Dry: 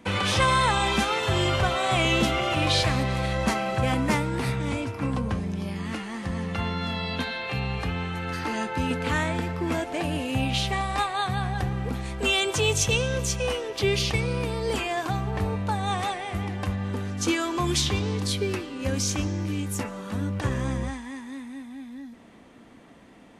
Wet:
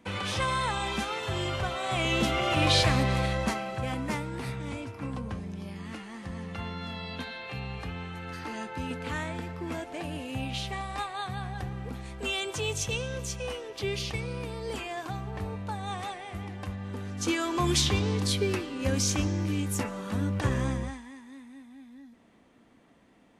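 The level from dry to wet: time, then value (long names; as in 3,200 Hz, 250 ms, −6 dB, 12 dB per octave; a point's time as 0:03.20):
0:01.79 −7.5 dB
0:02.65 0 dB
0:03.18 0 dB
0:03.71 −8 dB
0:16.83 −8 dB
0:17.66 −0.5 dB
0:20.63 −0.5 dB
0:21.15 −9.5 dB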